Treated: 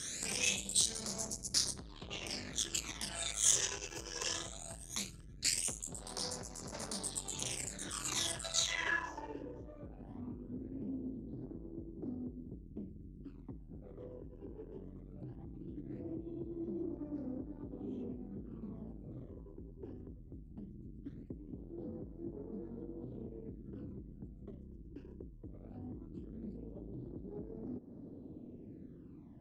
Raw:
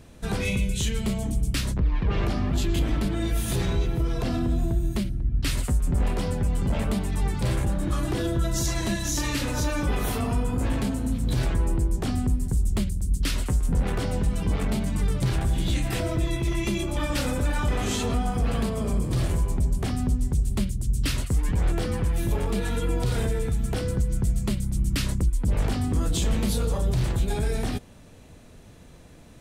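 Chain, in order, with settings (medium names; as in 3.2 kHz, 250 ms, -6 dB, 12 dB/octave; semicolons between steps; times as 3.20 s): phase shifter stages 12, 0.19 Hz, lowest notch 210–3000 Hz; in parallel at +2.5 dB: peak limiter -21.5 dBFS, peak gain reduction 7.5 dB; on the sum: compression 16:1, threshold -27 dBFS, peak gain reduction 15 dB; saturation -31.5 dBFS, distortion -12 dB; low-pass sweep 7.1 kHz -> 310 Hz, 8.42–9.46 s; tilt EQ +4.5 dB/octave; on a send at -20 dB: reverberation RT60 0.50 s, pre-delay 10 ms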